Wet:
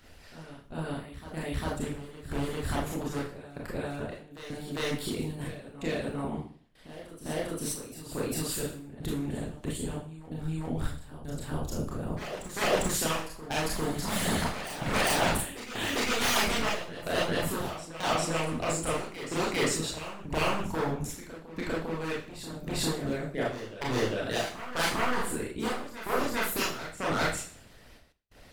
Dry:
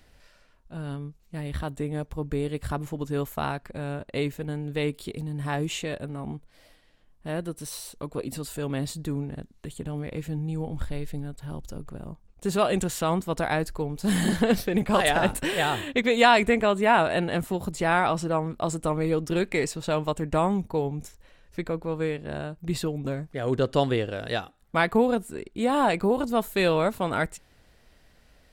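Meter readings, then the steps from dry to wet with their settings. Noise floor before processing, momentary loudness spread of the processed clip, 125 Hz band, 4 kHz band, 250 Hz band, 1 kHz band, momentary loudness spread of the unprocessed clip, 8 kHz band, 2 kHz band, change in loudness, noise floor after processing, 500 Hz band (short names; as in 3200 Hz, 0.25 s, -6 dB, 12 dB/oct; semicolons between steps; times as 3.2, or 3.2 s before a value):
-59 dBFS, 12 LU, -5.5 dB, 0.0 dB, -6.0 dB, -6.0 dB, 14 LU, +4.0 dB, -3.5 dB, -5.0 dB, -52 dBFS, -6.5 dB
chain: wavefolder -21.5 dBFS; limiter -26.5 dBFS, peak gain reduction 5 dB; step gate "xxxxx..xxx.." 80 bpm -60 dB; Schroeder reverb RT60 0.49 s, combs from 25 ms, DRR -5.5 dB; harmonic-percussive split harmonic -13 dB; on a send: reverse echo 0.4 s -12 dB; on the sum: gain +4.5 dB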